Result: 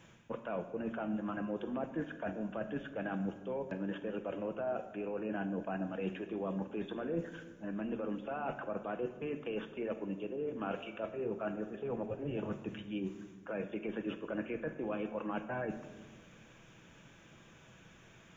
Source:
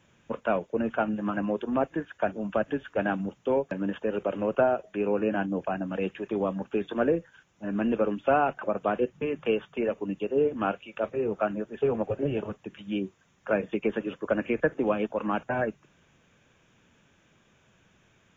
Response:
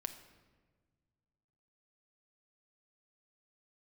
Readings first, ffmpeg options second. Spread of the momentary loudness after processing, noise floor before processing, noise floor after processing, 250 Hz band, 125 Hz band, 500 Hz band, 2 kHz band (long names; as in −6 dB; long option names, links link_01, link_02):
19 LU, −65 dBFS, −59 dBFS, −8.5 dB, −7.0 dB, −11.5 dB, −10.5 dB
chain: -filter_complex "[0:a]alimiter=limit=-19.5dB:level=0:latency=1:release=19,areverse,acompressor=threshold=-40dB:ratio=6,areverse[link_01];[1:a]atrim=start_sample=2205[link_02];[link_01][link_02]afir=irnorm=-1:irlink=0,volume=6dB"